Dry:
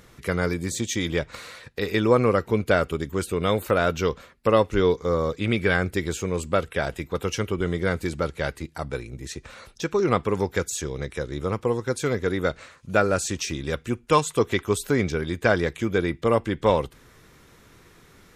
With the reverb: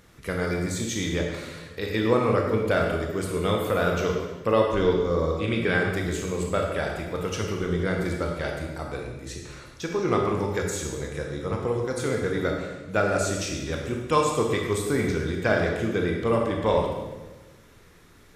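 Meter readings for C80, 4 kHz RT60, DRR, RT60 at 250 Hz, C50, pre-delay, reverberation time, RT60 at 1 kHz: 4.5 dB, 1.0 s, 0.0 dB, 1.5 s, 2.5 dB, 19 ms, 1.2 s, 1.1 s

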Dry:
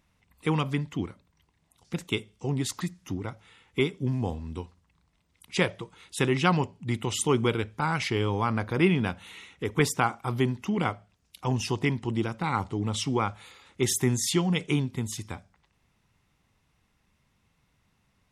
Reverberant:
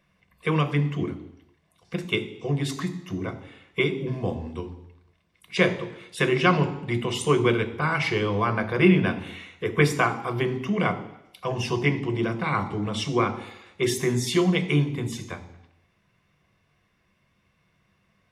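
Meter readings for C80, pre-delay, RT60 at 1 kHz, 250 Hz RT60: 15.0 dB, 3 ms, 0.80 s, 0.80 s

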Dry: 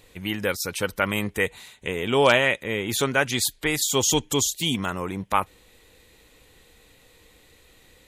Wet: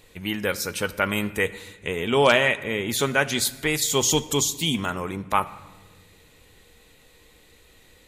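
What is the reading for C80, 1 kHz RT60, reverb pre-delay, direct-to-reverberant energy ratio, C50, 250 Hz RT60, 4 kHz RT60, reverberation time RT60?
18.0 dB, 1.2 s, 5 ms, 11.0 dB, 16.5 dB, 2.2 s, 0.90 s, 1.3 s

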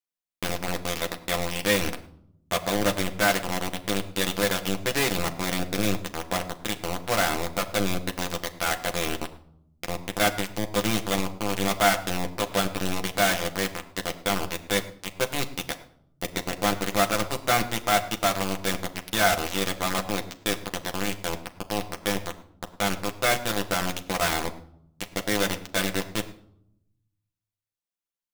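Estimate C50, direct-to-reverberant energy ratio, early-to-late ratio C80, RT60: 14.5 dB, 4.0 dB, 16.0 dB, no single decay rate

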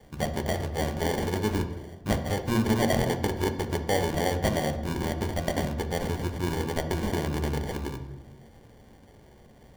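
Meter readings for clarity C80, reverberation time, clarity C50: 12.0 dB, 1.1 s, 10.0 dB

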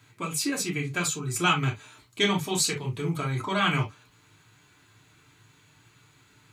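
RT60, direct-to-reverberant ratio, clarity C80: no single decay rate, -1.5 dB, 60.0 dB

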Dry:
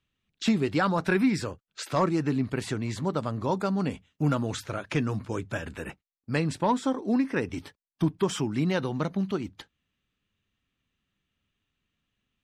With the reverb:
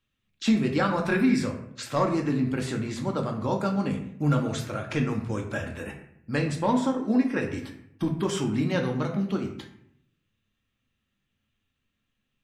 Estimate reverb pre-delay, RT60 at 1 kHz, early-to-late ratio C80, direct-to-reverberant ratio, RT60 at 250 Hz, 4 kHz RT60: 4 ms, 0.65 s, 10.5 dB, 1.5 dB, 0.90 s, 0.45 s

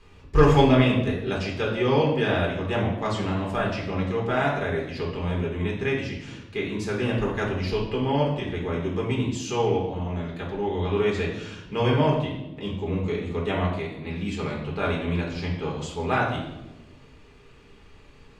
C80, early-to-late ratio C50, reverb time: 7.5 dB, 4.5 dB, 1.0 s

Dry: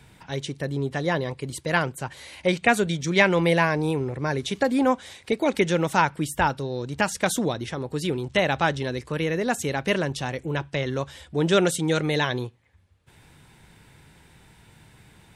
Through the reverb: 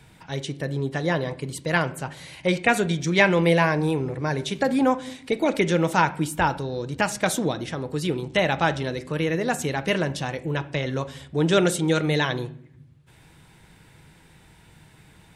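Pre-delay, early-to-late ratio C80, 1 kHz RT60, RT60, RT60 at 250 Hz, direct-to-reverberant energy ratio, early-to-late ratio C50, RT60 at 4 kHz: 6 ms, 20.5 dB, 0.55 s, 0.65 s, 1.4 s, 10.5 dB, 17.0 dB, 0.50 s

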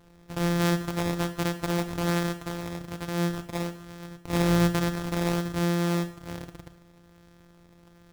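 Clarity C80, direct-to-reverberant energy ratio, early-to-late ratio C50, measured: 15.5 dB, 9.0 dB, 12.5 dB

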